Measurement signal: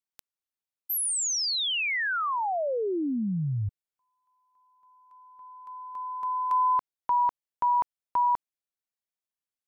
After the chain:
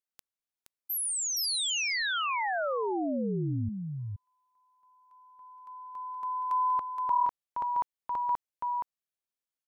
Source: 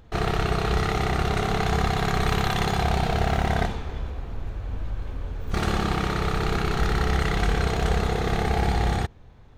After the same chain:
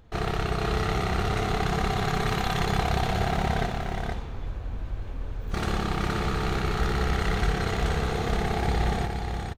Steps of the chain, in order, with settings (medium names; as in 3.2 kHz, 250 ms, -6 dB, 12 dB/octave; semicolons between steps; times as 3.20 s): delay 471 ms -4.5 dB; trim -3.5 dB